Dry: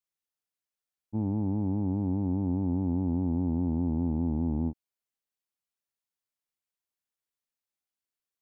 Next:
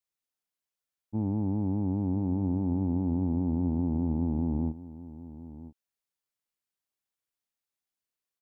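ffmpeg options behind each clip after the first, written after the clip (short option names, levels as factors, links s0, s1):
-af "aecho=1:1:995:0.168"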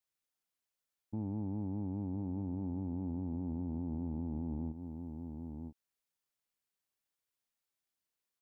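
-af "alimiter=level_in=2.11:limit=0.0631:level=0:latency=1:release=152,volume=0.473"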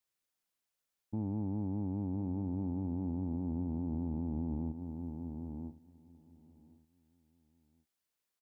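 -af "aecho=1:1:1065|2130:0.1|0.03,volume=1.26"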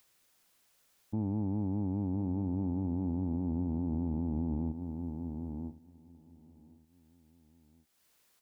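-af "acompressor=mode=upward:threshold=0.00112:ratio=2.5,volume=1.41"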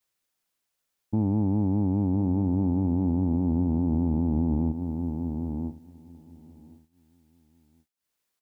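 -af "agate=range=0.0224:threshold=0.00141:ratio=3:detection=peak,volume=2.66"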